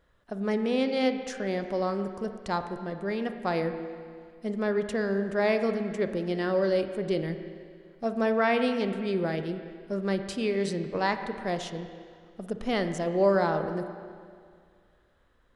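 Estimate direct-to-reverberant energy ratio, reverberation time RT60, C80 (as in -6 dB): 7.5 dB, 2.1 s, 9.0 dB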